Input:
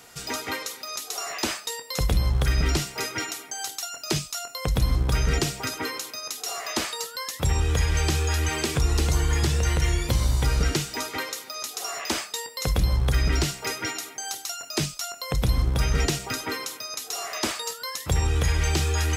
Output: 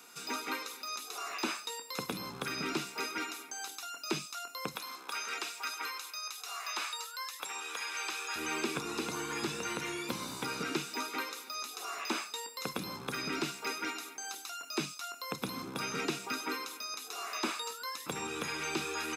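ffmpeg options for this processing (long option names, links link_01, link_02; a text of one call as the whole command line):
ffmpeg -i in.wav -filter_complex "[0:a]asettb=1/sr,asplit=3[link_01][link_02][link_03];[link_01]atrim=end=4.754[link_04];[link_02]atrim=start=4.75:end=8.36,asetpts=PTS-STARTPTS,afade=type=in:duration=0.004:curve=qsin,afade=type=out:start_time=3.606:duration=0.004:curve=qsin,highpass=820[link_05];[link_03]atrim=start=8.356[link_06];[link_04][link_05]acrossfade=duration=0.004:curve1=hsin:curve2=qsin[link_07];[link_07][link_06]acrossfade=duration=0.004:curve1=qsin:curve2=hsin,acrossover=split=3600[link_08][link_09];[link_09]acompressor=threshold=-37dB:ratio=4:attack=1:release=60[link_10];[link_08][link_10]amix=inputs=2:normalize=0,highpass=frequency=220:width=0.5412,highpass=frequency=220:width=1.3066,aecho=1:1:0.8:0.49,volume=-6dB" out.wav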